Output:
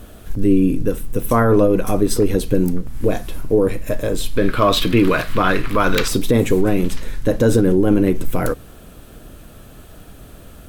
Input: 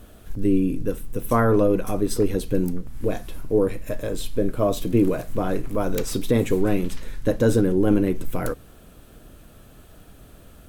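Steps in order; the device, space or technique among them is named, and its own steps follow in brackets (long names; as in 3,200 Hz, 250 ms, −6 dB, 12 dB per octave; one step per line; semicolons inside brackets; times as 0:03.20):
0:04.37–0:06.08: flat-topped bell 2,200 Hz +13 dB 2.5 octaves
clipper into limiter (hard clipping −9 dBFS, distortion −43 dB; brickwall limiter −12.5 dBFS, peak gain reduction 3.5 dB)
level +7 dB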